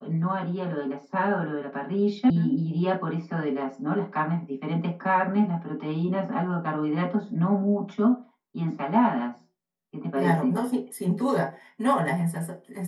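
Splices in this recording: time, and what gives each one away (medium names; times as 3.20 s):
2.30 s: sound stops dead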